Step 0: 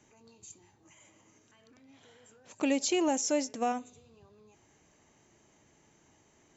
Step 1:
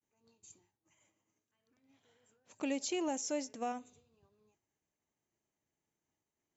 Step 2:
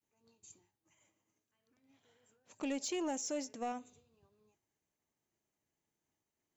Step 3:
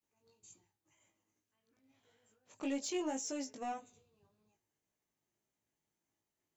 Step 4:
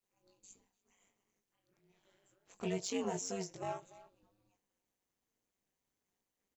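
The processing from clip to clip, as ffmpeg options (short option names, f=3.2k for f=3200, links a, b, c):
-af "agate=range=-33dB:threshold=-53dB:ratio=3:detection=peak,volume=-7.5dB"
-af "asoftclip=type=tanh:threshold=-29.5dB"
-af "flanger=delay=17.5:depth=2.3:speed=1.8,volume=2dB"
-filter_complex "[0:a]asplit=2[a][b];[b]adelay=290,highpass=300,lowpass=3.4k,asoftclip=type=hard:threshold=-38.5dB,volume=-16dB[c];[a][c]amix=inputs=2:normalize=0,aeval=exprs='val(0)*sin(2*PI*96*n/s)':c=same,volume=3dB"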